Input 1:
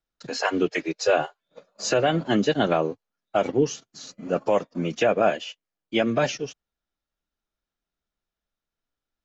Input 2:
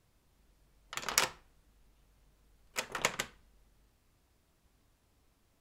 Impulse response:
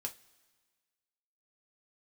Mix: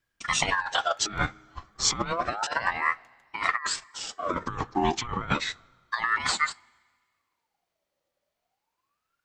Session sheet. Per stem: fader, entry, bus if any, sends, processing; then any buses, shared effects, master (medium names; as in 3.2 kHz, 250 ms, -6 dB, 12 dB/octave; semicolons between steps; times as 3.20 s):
+1.5 dB, 0.00 s, send -9.5 dB, ring modulator with a swept carrier 1.1 kHz, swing 50%, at 0.31 Hz
-18.0 dB, 0.00 s, no send, auto duck -22 dB, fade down 1.90 s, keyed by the first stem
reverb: on, pre-delay 3 ms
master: compressor with a negative ratio -26 dBFS, ratio -0.5